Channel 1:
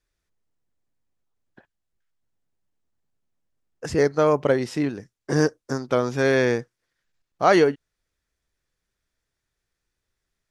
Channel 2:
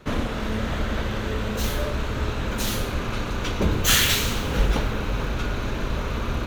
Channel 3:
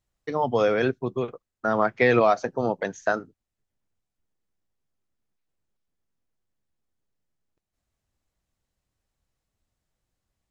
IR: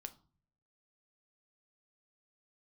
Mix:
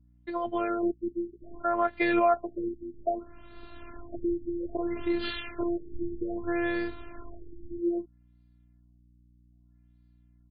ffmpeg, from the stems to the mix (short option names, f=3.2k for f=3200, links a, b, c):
-filter_complex "[0:a]acompressor=threshold=-22dB:ratio=6,adelay=300,volume=0.5dB[a];[1:a]adelay=1350,volume=-12.5dB[b];[2:a]volume=-1dB,asplit=2[c][d];[d]apad=whole_len=344832[e];[b][e]sidechaincompress=threshold=-28dB:ratio=5:attack=16:release=1110[f];[a][f][c]amix=inputs=3:normalize=0,afftfilt=real='hypot(re,im)*cos(PI*b)':imag='0':win_size=512:overlap=0.75,aeval=exprs='val(0)+0.00112*(sin(2*PI*60*n/s)+sin(2*PI*2*60*n/s)/2+sin(2*PI*3*60*n/s)/3+sin(2*PI*4*60*n/s)/4+sin(2*PI*5*60*n/s)/5)':c=same,afftfilt=real='re*lt(b*sr/1024,370*pow(4900/370,0.5+0.5*sin(2*PI*0.62*pts/sr)))':imag='im*lt(b*sr/1024,370*pow(4900/370,0.5+0.5*sin(2*PI*0.62*pts/sr)))':win_size=1024:overlap=0.75"